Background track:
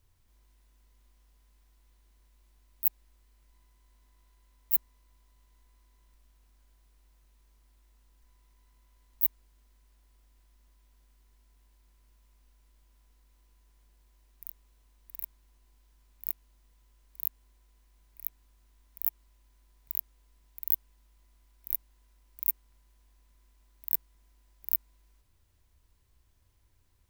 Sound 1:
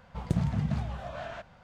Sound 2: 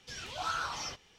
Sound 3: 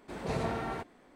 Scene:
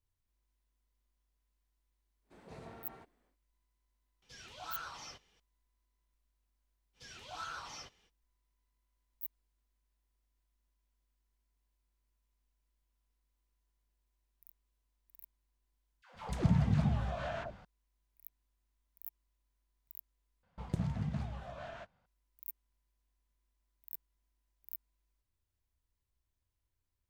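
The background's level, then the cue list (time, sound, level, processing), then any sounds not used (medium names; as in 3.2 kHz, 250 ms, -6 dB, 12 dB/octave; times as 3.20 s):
background track -17 dB
2.22 s: add 3 -18 dB, fades 0.10 s
4.22 s: add 2 -10 dB
6.93 s: add 2 -9 dB, fades 0.05 s
16.02 s: replace with 1 -0.5 dB + phase dispersion lows, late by 131 ms, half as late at 610 Hz
20.43 s: replace with 1 -7.5 dB + gate -47 dBFS, range -12 dB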